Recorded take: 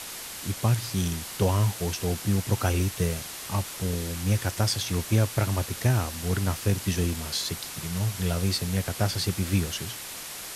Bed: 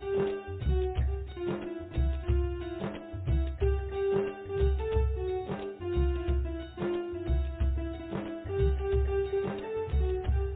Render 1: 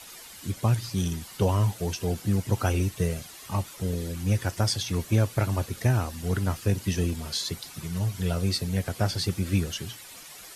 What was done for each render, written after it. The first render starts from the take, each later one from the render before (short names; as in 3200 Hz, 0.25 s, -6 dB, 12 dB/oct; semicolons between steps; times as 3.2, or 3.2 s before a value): denoiser 11 dB, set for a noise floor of -39 dBFS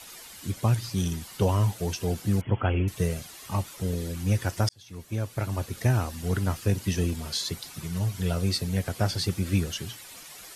2.41–2.88 brick-wall FIR low-pass 3400 Hz; 4.69–5.89 fade in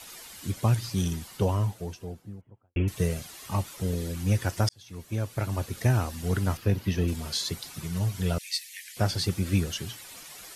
0.97–2.76 studio fade out; 6.57–7.08 bell 8200 Hz -13 dB 1.1 oct; 8.38–8.97 Chebyshev high-pass 1800 Hz, order 6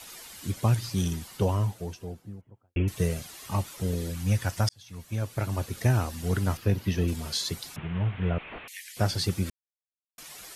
4.1–5.22 bell 370 Hz -7.5 dB; 7.76–8.68 delta modulation 16 kbps, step -37 dBFS; 9.5–10.18 mute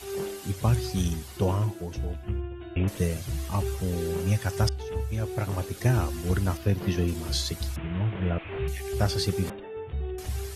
add bed -3.5 dB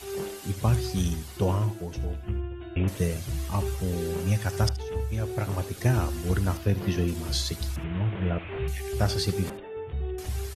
echo 75 ms -16.5 dB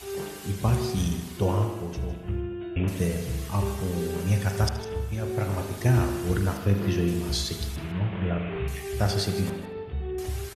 echo 0.156 s -13.5 dB; spring tank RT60 1.3 s, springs 40 ms, chirp 75 ms, DRR 5 dB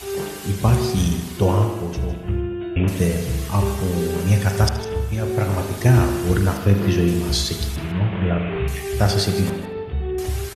gain +7 dB